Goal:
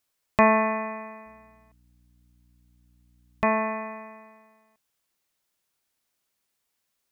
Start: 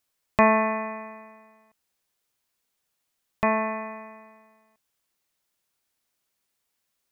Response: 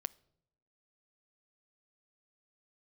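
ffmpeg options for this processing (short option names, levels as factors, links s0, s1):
-filter_complex "[0:a]asettb=1/sr,asplit=3[s0][s1][s2];[s0]atrim=end=1.264[s3];[s1]atrim=start=1.26:end=3.47,asetpts=PTS-STARTPTS,afade=t=in:d=0.004:c=qsin,afade=t=out:st=2.206:d=0.004:c=qsin,aeval=exprs='val(0)+0.001*(sin(2*PI*60*n/s)+sin(2*PI*2*60*n/s)/2+sin(2*PI*3*60*n/s)/3+sin(2*PI*4*60*n/s)/4+sin(2*PI*5*60*n/s)/5)':c=same[s4];[s2]atrim=start=3.466[s5];[s3][s4]acrossfade=d=0.004:c1=hsin:c2=qsin[s6];[s6][s5]acrossfade=d=0.004:c1=qsin:c2=hsin"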